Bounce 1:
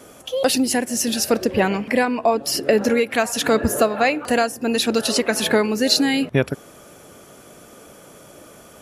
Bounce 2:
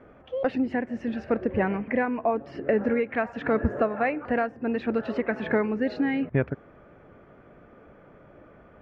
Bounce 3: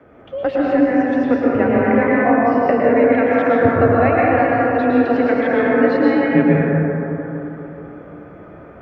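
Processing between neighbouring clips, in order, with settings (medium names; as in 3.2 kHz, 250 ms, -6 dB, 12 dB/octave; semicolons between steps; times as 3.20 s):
Chebyshev low-pass 2 kHz, order 3; bass shelf 76 Hz +11.5 dB; trim -6.5 dB
frequency shift +25 Hz; reverberation RT60 3.7 s, pre-delay 103 ms, DRR -6.5 dB; trim +3.5 dB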